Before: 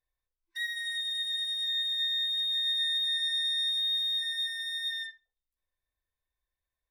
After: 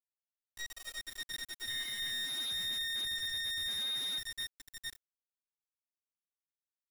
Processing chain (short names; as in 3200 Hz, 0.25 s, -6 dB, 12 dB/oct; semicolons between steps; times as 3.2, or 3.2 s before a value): bit-crush 5-bit; 1.69–2.12 small resonant body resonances 2100/3000 Hz, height 18 dB; slew limiter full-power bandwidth 170 Hz; gain -7.5 dB